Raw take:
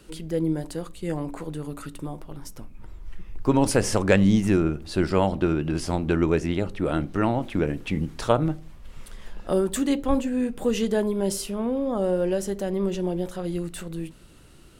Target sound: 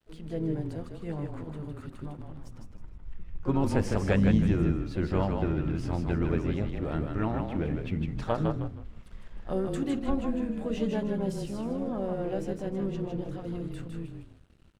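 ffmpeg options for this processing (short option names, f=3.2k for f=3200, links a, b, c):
-filter_complex "[0:a]lowpass=8.8k,equalizer=f=65:w=0.6:g=4.5,bandreject=f=60:t=h:w=6,bandreject=f=120:t=h:w=6,bandreject=f=180:t=h:w=6,bandreject=f=240:t=h:w=6,bandreject=f=300:t=h:w=6,bandreject=f=360:t=h:w=6,bandreject=f=420:t=h:w=6,bandreject=f=480:t=h:w=6,bandreject=f=540:t=h:w=6,asplit=2[a][b];[b]asplit=4[c][d][e][f];[c]adelay=156,afreqshift=-32,volume=-4.5dB[g];[d]adelay=312,afreqshift=-64,volume=-15dB[h];[e]adelay=468,afreqshift=-96,volume=-25.4dB[i];[f]adelay=624,afreqshift=-128,volume=-35.9dB[j];[g][h][i][j]amix=inputs=4:normalize=0[k];[a][k]amix=inputs=2:normalize=0,aeval=exprs='sgn(val(0))*max(abs(val(0))-0.00376,0)':c=same,asplit=2[l][m];[m]asetrate=58866,aresample=44100,atempo=0.749154,volume=-12dB[n];[l][n]amix=inputs=2:normalize=0,bass=f=250:g=4,treble=f=4k:g=-8,volume=-9dB"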